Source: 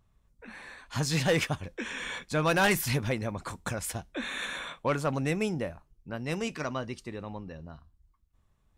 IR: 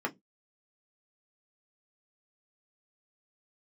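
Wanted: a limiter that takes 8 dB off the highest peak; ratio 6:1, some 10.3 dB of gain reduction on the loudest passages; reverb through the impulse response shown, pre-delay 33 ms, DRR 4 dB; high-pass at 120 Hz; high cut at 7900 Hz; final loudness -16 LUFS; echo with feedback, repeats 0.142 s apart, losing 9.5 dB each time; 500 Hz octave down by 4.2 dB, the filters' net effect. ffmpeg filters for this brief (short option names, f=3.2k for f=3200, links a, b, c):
-filter_complex "[0:a]highpass=120,lowpass=7.9k,equalizer=f=500:t=o:g=-5,acompressor=threshold=-33dB:ratio=6,alimiter=level_in=7dB:limit=-24dB:level=0:latency=1,volume=-7dB,aecho=1:1:142|284|426|568:0.335|0.111|0.0365|0.012,asplit=2[a][b];[1:a]atrim=start_sample=2205,adelay=33[c];[b][c]afir=irnorm=-1:irlink=0,volume=-10dB[d];[a][d]amix=inputs=2:normalize=0,volume=23.5dB"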